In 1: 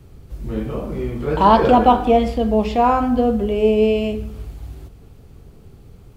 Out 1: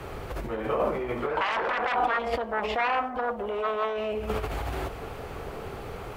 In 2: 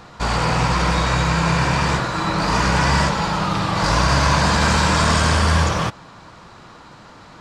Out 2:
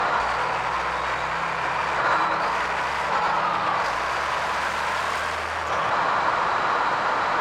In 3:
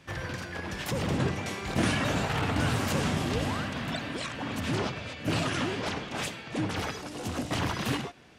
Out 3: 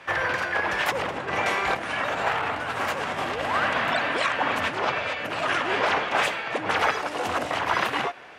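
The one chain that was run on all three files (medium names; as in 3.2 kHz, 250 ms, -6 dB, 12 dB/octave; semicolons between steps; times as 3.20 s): Chebyshev shaper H 3 -8 dB, 7 -10 dB, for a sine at -1 dBFS; compressor with a negative ratio -25 dBFS, ratio -1; three-band isolator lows -20 dB, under 490 Hz, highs -14 dB, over 2.6 kHz; trim +5.5 dB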